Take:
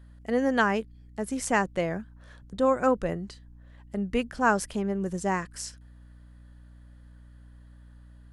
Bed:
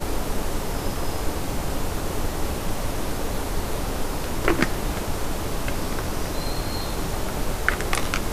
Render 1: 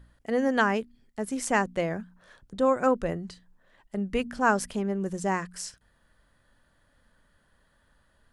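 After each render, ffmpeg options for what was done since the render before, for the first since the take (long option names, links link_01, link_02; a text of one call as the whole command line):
ffmpeg -i in.wav -af "bandreject=frequency=60:width_type=h:width=4,bandreject=frequency=120:width_type=h:width=4,bandreject=frequency=180:width_type=h:width=4,bandreject=frequency=240:width_type=h:width=4,bandreject=frequency=300:width_type=h:width=4" out.wav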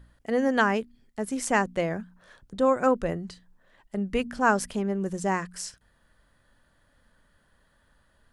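ffmpeg -i in.wav -af "volume=1dB" out.wav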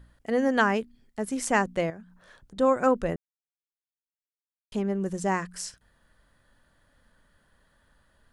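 ffmpeg -i in.wav -filter_complex "[0:a]asettb=1/sr,asplit=3[link_01][link_02][link_03];[link_01]atrim=end=1.904[link_04];[link_02]atrim=start=1.9:end=2.57,asetpts=PTS-STARTPTS,afade=type=in:duration=0.004:curve=qsin,afade=type=out:start_time=0.666:duration=0.004:curve=qsin,acompressor=threshold=-48dB:ratio=2:attack=3.2:release=140:knee=1:detection=peak[link_05];[link_03]atrim=start=2.566[link_06];[link_04][link_05]acrossfade=duration=0.004:curve1=hsin:curve2=qsin[link_07];[link_07][link_06]acrossfade=duration=0.004:curve1=qsin:curve2=hsin,asplit=3[link_08][link_09][link_10];[link_08]atrim=end=3.16,asetpts=PTS-STARTPTS,afade=type=out:start_time=3.156:duration=0.004:curve=hsin[link_11];[link_09]atrim=start=3.16:end=4.72,asetpts=PTS-STARTPTS,volume=0[link_12];[link_10]atrim=start=4.72,asetpts=PTS-STARTPTS,afade=type=in:duration=0.004:curve=hsin[link_13];[link_11][link_12][link_13]concat=n=3:v=0:a=1" out.wav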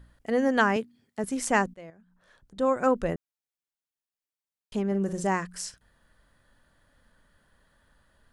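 ffmpeg -i in.wav -filter_complex "[0:a]asettb=1/sr,asplit=3[link_01][link_02][link_03];[link_01]atrim=end=0.764[link_04];[link_02]atrim=start=0.76:end=1.24,asetpts=PTS-STARTPTS,afade=type=in:duration=0.004:curve=qsin,afade=type=out:start_time=0.476:duration=0.004:curve=qsin,highpass=frequency=100:width=0.5412,highpass=frequency=100:width=1.3066[link_05];[link_03]atrim=start=1.236[link_06];[link_04][link_05]acrossfade=duration=0.004:curve1=hsin:curve2=qsin[link_07];[link_07][link_06]acrossfade=duration=0.004:curve1=qsin:curve2=hsin,asettb=1/sr,asplit=3[link_08][link_09][link_10];[link_08]atrim=end=4.874[link_11];[link_09]atrim=start=4.87:end=5.27,asetpts=PTS-STARTPTS,afade=type=in:duration=0.004:curve=qsin,afade=type=out:start_time=0.396:duration=0.004:curve=qsin,asplit=2[link_12][link_13];[link_13]adelay=46,volume=-9.5dB[link_14];[link_12][link_14]amix=inputs=2:normalize=0,atrim=end_sample=17640[link_15];[link_10]atrim=start=5.266[link_16];[link_11][link_15]acrossfade=duration=0.004:curve1=hsin:curve2=qsin[link_17];[link_17][link_16]acrossfade=duration=0.004:curve1=qsin:curve2=hsin,asplit=2[link_18][link_19];[link_18]atrim=end=1.74,asetpts=PTS-STARTPTS,afade=type=out:start_time=1.736:duration=0.004:curve=hsin:silence=0.0707946[link_20];[link_19]atrim=start=1.74,asetpts=PTS-STARTPTS,afade=type=in:duration=1.3:silence=0.0707946[link_21];[link_20][link_21]concat=n=2:v=0:a=1" out.wav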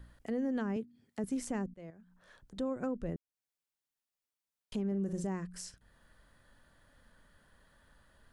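ffmpeg -i in.wav -filter_complex "[0:a]acrossover=split=400[link_01][link_02];[link_02]acompressor=threshold=-50dB:ratio=2[link_03];[link_01][link_03]amix=inputs=2:normalize=0,alimiter=level_in=3dB:limit=-24dB:level=0:latency=1:release=226,volume=-3dB" out.wav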